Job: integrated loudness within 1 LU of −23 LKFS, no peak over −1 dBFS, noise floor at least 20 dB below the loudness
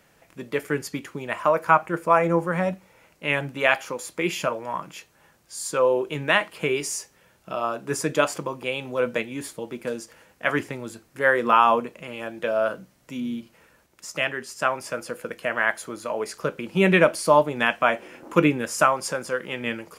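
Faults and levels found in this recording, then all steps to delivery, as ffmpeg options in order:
integrated loudness −24.0 LKFS; sample peak −4.0 dBFS; target loudness −23.0 LKFS
→ -af "volume=1dB"

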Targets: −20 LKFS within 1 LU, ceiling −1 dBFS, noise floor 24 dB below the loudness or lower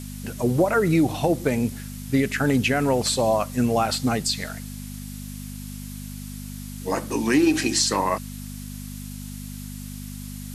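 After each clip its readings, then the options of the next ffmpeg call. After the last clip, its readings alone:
mains hum 50 Hz; hum harmonics up to 250 Hz; level of the hum −33 dBFS; background noise floor −36 dBFS; target noise floor −47 dBFS; integrated loudness −22.5 LKFS; sample peak −8.5 dBFS; target loudness −20.0 LKFS
→ -af "bandreject=frequency=50:width_type=h:width=4,bandreject=frequency=100:width_type=h:width=4,bandreject=frequency=150:width_type=h:width=4,bandreject=frequency=200:width_type=h:width=4,bandreject=frequency=250:width_type=h:width=4"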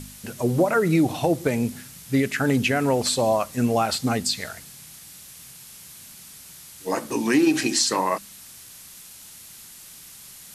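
mains hum none found; background noise floor −45 dBFS; target noise floor −47 dBFS
→ -af "afftdn=noise_reduction=6:noise_floor=-45"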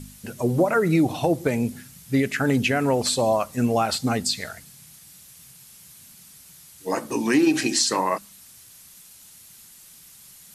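background noise floor −49 dBFS; integrated loudness −22.5 LKFS; sample peak −8.5 dBFS; target loudness −20.0 LKFS
→ -af "volume=2.5dB"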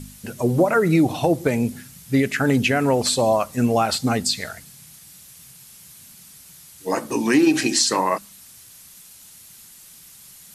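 integrated loudness −20.0 LKFS; sample peak −6.0 dBFS; background noise floor −46 dBFS

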